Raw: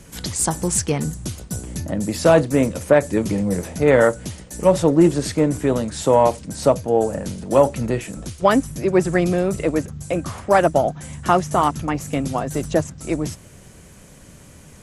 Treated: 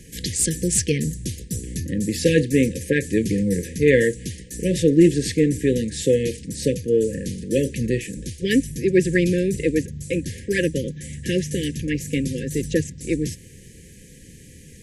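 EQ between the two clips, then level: dynamic EQ 2800 Hz, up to +4 dB, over -35 dBFS, Q 1.3; brick-wall FIR band-stop 540–1600 Hz; 0.0 dB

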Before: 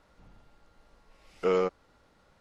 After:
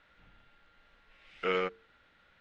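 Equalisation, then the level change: air absorption 61 m; band shelf 2300 Hz +12.5 dB; notches 50/100/150/200/250/300/350/400/450 Hz; -6.0 dB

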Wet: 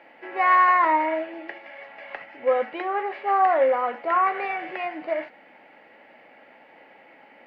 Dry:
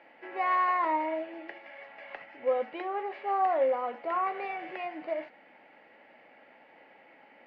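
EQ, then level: dynamic EQ 1600 Hz, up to +7 dB, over -45 dBFS, Q 1.2; +5.5 dB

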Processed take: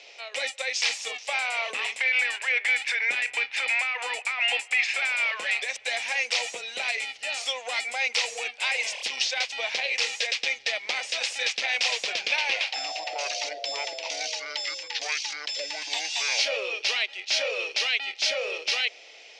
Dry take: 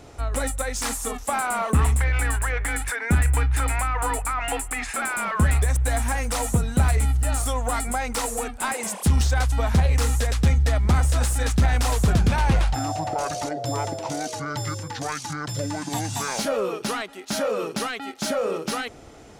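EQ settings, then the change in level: Chebyshev band-pass 510–5400 Hz, order 3; resonant high shelf 1800 Hz +10.5 dB, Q 3; -4.5 dB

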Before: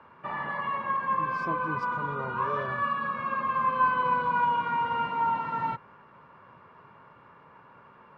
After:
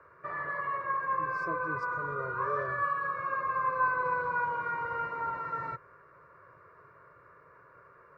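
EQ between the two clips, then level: fixed phaser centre 840 Hz, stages 6; 0.0 dB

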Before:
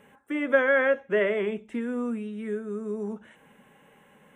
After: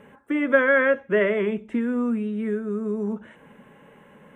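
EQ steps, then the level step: dynamic EQ 520 Hz, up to -5 dB, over -36 dBFS, Q 0.82; high shelf 2600 Hz -11.5 dB; notch 780 Hz, Q 12; +8.0 dB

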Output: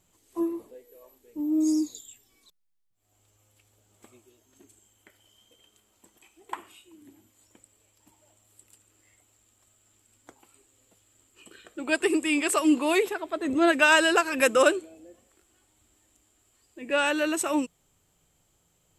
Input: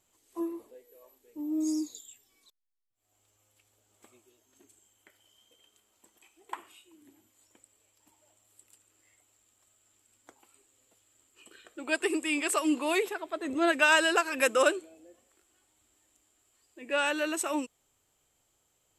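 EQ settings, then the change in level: bell 170 Hz +10 dB 0.21 oct; low shelf 240 Hz +8 dB; +3.0 dB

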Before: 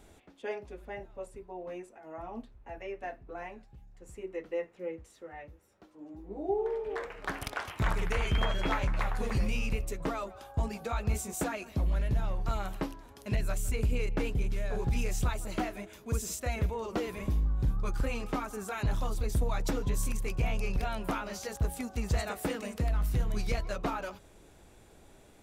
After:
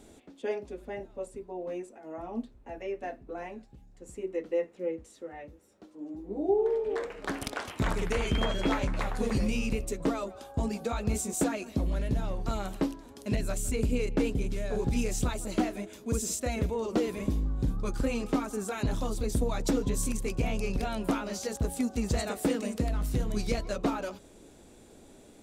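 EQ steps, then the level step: graphic EQ 250/500/4000/8000 Hz +10/+5/+4/+7 dB; -2.0 dB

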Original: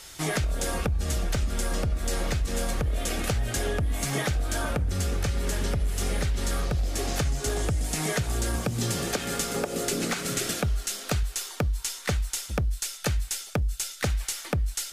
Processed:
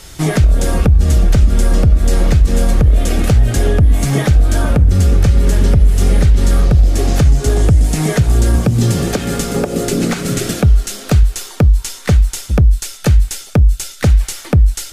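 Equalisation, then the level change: low shelf 430 Hz +12 dB; +6.0 dB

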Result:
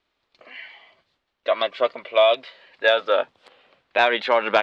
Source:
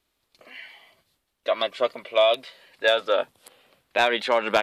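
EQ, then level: Bessel low-pass 9200 Hz; air absorption 170 m; low shelf 310 Hz -9 dB; +5.0 dB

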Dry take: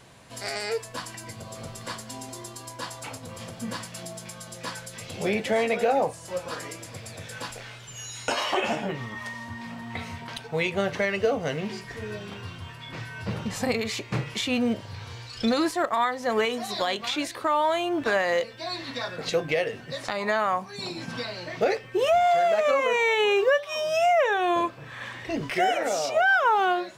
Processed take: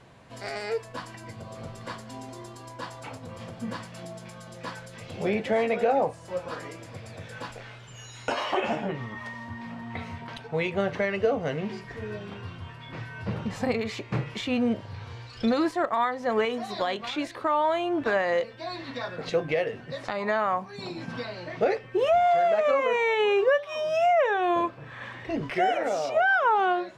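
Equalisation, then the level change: LPF 2000 Hz 6 dB/oct; 0.0 dB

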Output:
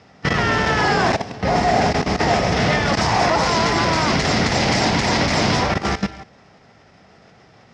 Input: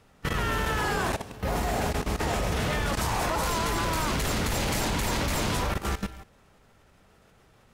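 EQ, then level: speaker cabinet 150–6200 Hz, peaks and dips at 720 Hz +7 dB, 2000 Hz +6 dB, 5200 Hz +9 dB; low shelf 190 Hz +10 dB; +7.5 dB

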